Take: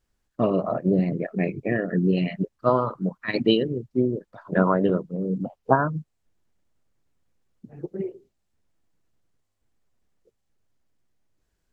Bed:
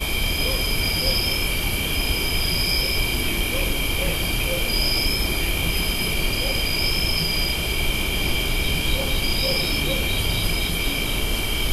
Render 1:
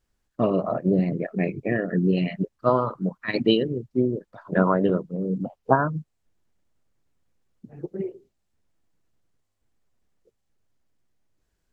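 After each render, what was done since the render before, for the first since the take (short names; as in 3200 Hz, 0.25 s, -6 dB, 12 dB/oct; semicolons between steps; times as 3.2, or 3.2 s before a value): nothing audible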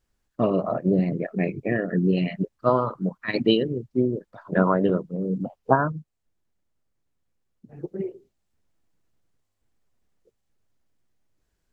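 5.92–7.69 gain -5 dB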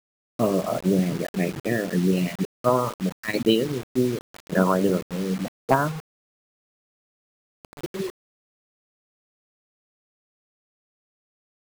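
hard clip -7.5 dBFS, distortion -26 dB; requantised 6-bit, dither none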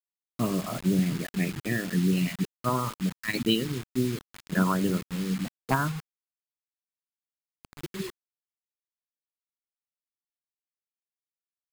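bell 550 Hz -13.5 dB 1.3 oct; notch 5800 Hz, Q 16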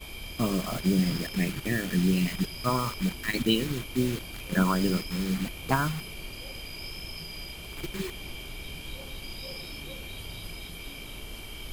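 add bed -17.5 dB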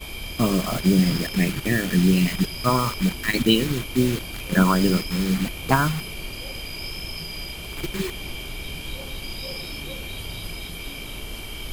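gain +6.5 dB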